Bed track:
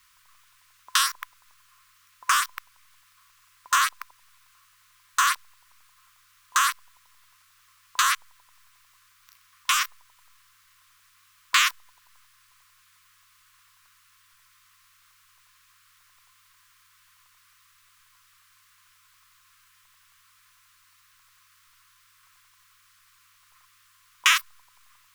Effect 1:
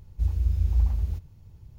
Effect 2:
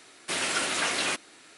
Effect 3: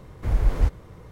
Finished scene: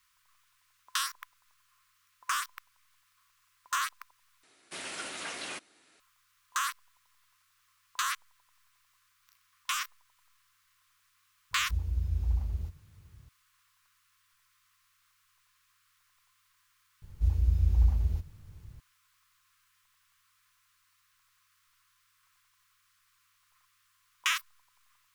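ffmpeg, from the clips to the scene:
-filter_complex "[1:a]asplit=2[a][b];[0:a]volume=-10dB[c];[a]highpass=42[d];[c]asplit=2[e][f];[e]atrim=end=4.434[g];[2:a]atrim=end=1.57,asetpts=PTS-STARTPTS,volume=-11.5dB[h];[f]atrim=start=5.996[i];[d]atrim=end=1.78,asetpts=PTS-STARTPTS,volume=-6dB,afade=t=in:d=0.004:c=hsin,afade=t=out:st=1.776:d=0.004:c=hsin,adelay=11510[j];[b]atrim=end=1.78,asetpts=PTS-STARTPTS,volume=-1.5dB,afade=t=in:d=0.004:c=hsin,afade=t=out:st=1.776:d=0.004:c=hsin,adelay=17020[k];[g][h]acrossfade=d=0.004:c1=hsin:c2=hsin[l];[l][i]acrossfade=d=0.004:c1=hsin:c2=hsin[m];[m][j][k]amix=inputs=3:normalize=0"

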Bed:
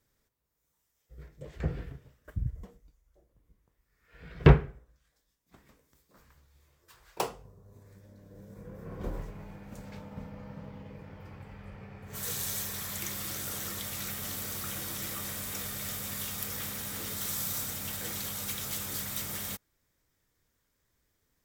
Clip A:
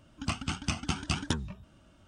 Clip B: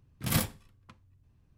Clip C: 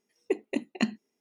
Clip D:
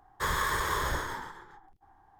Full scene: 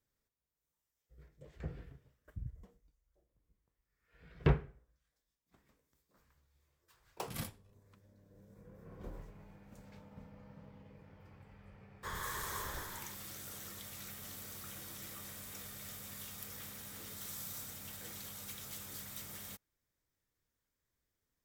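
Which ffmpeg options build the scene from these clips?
-filter_complex "[0:a]volume=-11dB[a];[4:a]aeval=exprs='val(0)*gte(abs(val(0)),0.00708)':c=same[b];[2:a]atrim=end=1.57,asetpts=PTS-STARTPTS,volume=-14.5dB,afade=t=in:d=0.004:c=hsin,afade=t=out:st=1.566:d=0.004:c=hsin,adelay=7040[c];[b]atrim=end=2.19,asetpts=PTS-STARTPTS,volume=-13dB,afade=t=in:d=0.004:c=hsin,afade=t=out:st=2.186:d=0.004:c=hsin,adelay=11830[d];[a][c][d]amix=inputs=3:normalize=0"

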